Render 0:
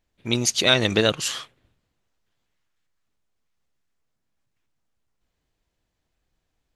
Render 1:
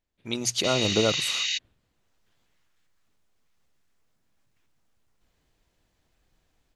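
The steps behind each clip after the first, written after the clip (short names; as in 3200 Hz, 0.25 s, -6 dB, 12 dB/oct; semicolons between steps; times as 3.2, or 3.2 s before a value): notches 60/120 Hz; spectral repair 0.67–1.55, 1500–7500 Hz before; AGC gain up to 14 dB; gain -8 dB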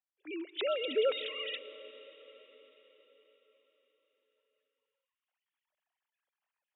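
sine-wave speech; reverb RT60 5.2 s, pre-delay 0.1 s, DRR 13.5 dB; gain -8.5 dB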